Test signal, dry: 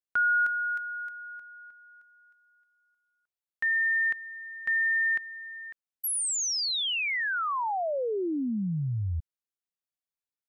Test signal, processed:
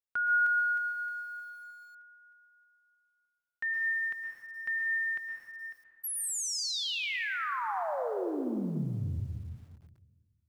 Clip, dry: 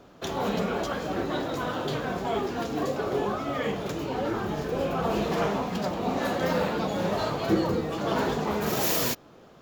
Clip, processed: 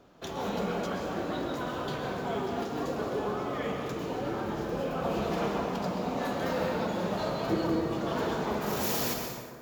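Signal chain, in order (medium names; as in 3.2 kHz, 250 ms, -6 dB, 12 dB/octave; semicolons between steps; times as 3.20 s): plate-style reverb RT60 1.8 s, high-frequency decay 0.5×, pre-delay 115 ms, DRR 2.5 dB; bit-crushed delay 113 ms, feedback 35%, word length 8-bit, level -13.5 dB; trim -6 dB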